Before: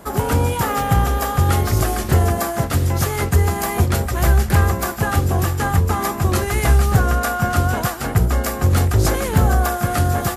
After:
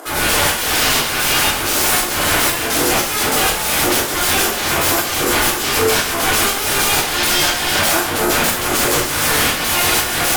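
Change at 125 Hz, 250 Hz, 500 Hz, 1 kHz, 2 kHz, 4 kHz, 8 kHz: -13.5 dB, -0.5 dB, +2.5 dB, +2.5 dB, +9.0 dB, +15.5 dB, +12.0 dB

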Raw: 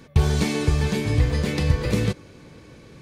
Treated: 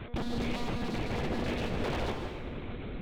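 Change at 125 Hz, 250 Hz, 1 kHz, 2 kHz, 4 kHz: -16.0 dB, -8.5 dB, -3.0 dB, -8.0 dB, -8.5 dB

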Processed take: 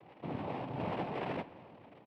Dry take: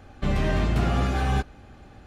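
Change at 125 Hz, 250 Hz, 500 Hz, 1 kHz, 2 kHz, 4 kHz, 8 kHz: -19.0 dB, -12.5 dB, -8.5 dB, -9.5 dB, -14.5 dB, -15.5 dB, under -30 dB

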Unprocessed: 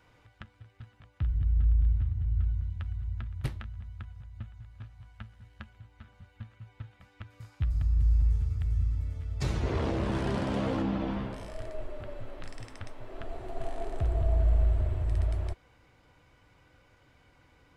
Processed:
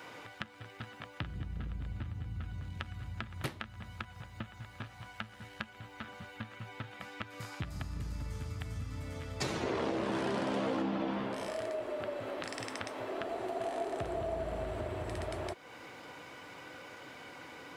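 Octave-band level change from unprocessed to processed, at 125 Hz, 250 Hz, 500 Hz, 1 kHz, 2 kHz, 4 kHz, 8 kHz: -11.0 dB, -2.5 dB, +2.0 dB, +2.5 dB, +4.5 dB, +4.0 dB, no reading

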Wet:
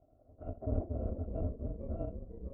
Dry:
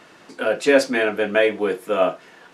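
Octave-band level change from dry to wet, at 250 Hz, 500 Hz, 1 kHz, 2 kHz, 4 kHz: -16.5 dB, -24.5 dB, -26.0 dB, under -40 dB, under -40 dB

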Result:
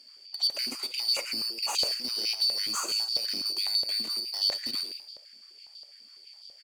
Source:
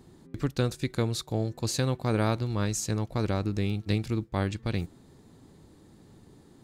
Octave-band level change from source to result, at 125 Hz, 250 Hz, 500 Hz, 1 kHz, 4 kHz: under -30 dB, -18.0 dB, -13.5 dB, -5.5 dB, +15.0 dB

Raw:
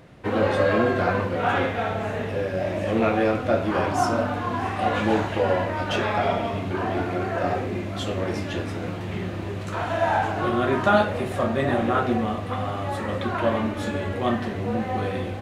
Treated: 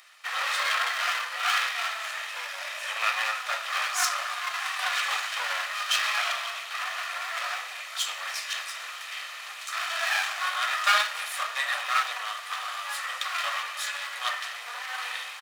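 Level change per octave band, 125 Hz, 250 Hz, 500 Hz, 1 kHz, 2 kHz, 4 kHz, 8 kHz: under -40 dB, under -40 dB, -21.5 dB, -5.0 dB, +2.5 dB, +8.0 dB, +11.0 dB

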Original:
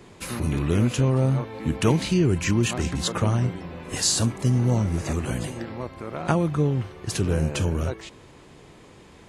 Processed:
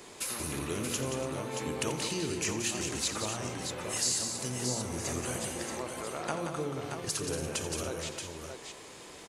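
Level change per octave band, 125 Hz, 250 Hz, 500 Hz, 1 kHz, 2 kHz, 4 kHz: -17.5 dB, -12.5 dB, -7.5 dB, -6.0 dB, -5.0 dB, -4.0 dB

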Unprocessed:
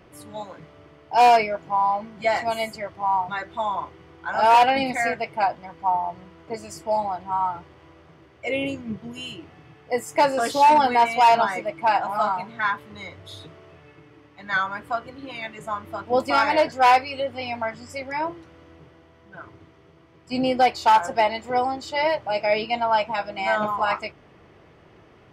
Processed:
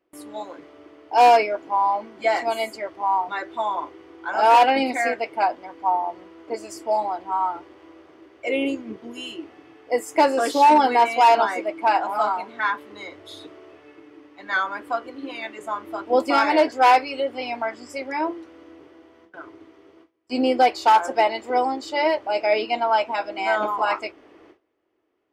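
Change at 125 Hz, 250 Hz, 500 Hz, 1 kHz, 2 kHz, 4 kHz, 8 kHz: under -10 dB, +3.0 dB, +2.0 dB, +1.0 dB, 0.0 dB, 0.0 dB, 0.0 dB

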